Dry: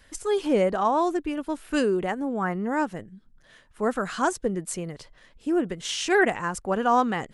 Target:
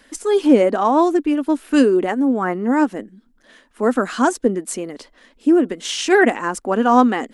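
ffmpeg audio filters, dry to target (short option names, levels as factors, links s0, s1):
-af "lowshelf=f=180:t=q:w=3:g=-11.5,aphaser=in_gain=1:out_gain=1:delay=4.4:decay=0.21:speed=2:type=sinusoidal,volume=1.78"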